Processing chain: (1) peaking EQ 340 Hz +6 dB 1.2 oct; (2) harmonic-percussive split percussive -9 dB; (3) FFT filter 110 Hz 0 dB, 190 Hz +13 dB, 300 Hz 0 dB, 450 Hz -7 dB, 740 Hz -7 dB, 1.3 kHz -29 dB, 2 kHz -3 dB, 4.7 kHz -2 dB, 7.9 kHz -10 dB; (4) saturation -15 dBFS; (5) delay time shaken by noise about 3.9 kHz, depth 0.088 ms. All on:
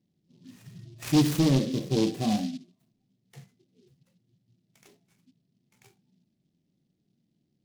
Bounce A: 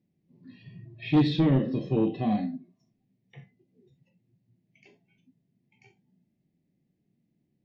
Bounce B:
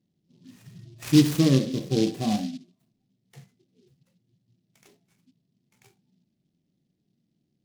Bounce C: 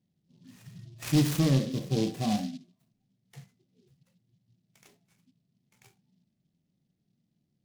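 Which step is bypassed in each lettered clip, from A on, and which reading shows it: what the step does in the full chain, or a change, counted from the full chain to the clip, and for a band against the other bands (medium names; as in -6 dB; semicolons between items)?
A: 5, 4 kHz band -5.0 dB; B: 4, distortion -12 dB; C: 1, 125 Hz band +2.5 dB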